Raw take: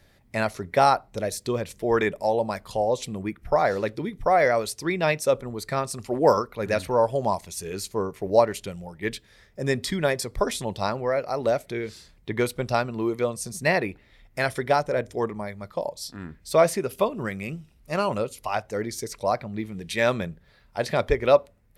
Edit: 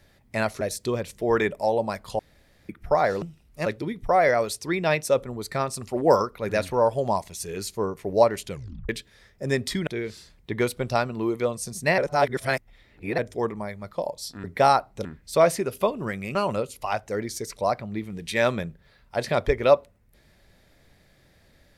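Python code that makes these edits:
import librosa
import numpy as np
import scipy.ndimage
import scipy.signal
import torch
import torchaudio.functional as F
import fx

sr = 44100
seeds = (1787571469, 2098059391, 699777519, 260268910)

y = fx.edit(x, sr, fx.move(start_s=0.61, length_s=0.61, to_s=16.23),
    fx.room_tone_fill(start_s=2.8, length_s=0.5),
    fx.tape_stop(start_s=8.68, length_s=0.38),
    fx.cut(start_s=10.04, length_s=1.62),
    fx.reverse_span(start_s=13.77, length_s=1.2),
    fx.move(start_s=17.53, length_s=0.44, to_s=3.83), tone=tone)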